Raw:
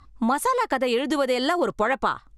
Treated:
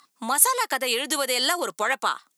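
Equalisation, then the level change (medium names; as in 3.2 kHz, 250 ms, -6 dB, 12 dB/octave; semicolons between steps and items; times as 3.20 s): elliptic high-pass 160 Hz; tilt EQ +4.5 dB/octave; treble shelf 10 kHz +7 dB; -1.0 dB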